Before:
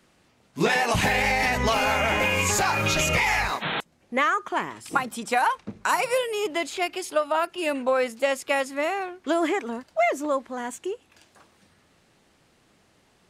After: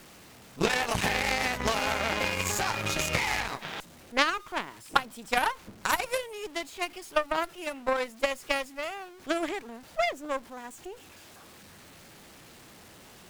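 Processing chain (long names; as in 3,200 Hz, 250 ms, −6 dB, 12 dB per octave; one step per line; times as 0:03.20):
converter with a step at zero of −25.5 dBFS
harmonic generator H 3 −10 dB, 6 −32 dB, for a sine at −7.5 dBFS
level +4.5 dB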